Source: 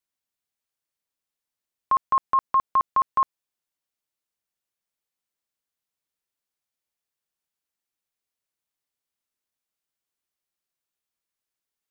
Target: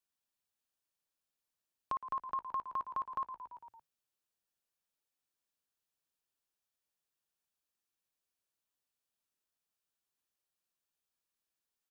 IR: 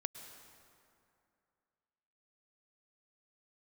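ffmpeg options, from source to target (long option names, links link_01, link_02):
-filter_complex "[0:a]bandreject=frequency=2100:width=9.2,asplit=2[link_01][link_02];[link_02]asplit=5[link_03][link_04][link_05][link_06][link_07];[link_03]adelay=113,afreqshift=-32,volume=-12dB[link_08];[link_04]adelay=226,afreqshift=-64,volume=-18.2dB[link_09];[link_05]adelay=339,afreqshift=-96,volume=-24.4dB[link_10];[link_06]adelay=452,afreqshift=-128,volume=-30.6dB[link_11];[link_07]adelay=565,afreqshift=-160,volume=-36.8dB[link_12];[link_08][link_09][link_10][link_11][link_12]amix=inputs=5:normalize=0[link_13];[link_01][link_13]amix=inputs=2:normalize=0,acompressor=threshold=-43dB:ratio=2,volume=-3dB"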